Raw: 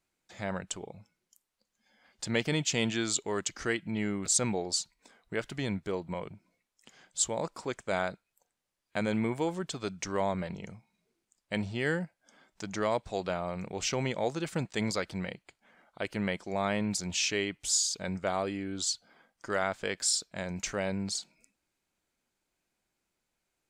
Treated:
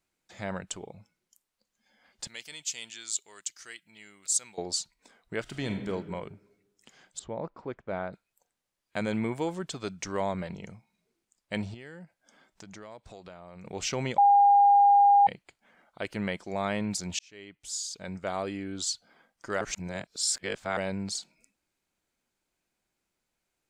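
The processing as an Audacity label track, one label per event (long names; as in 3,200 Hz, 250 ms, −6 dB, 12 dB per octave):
2.270000	4.580000	first-order pre-emphasis coefficient 0.97
5.410000	5.900000	thrown reverb, RT60 1.2 s, DRR 5 dB
7.190000	8.130000	head-to-tape spacing loss at 10 kHz 42 dB
11.740000	13.650000	downward compressor 4 to 1, threshold −45 dBFS
14.180000	15.270000	beep over 808 Hz −15.5 dBFS
17.190000	18.540000	fade in
19.610000	20.770000	reverse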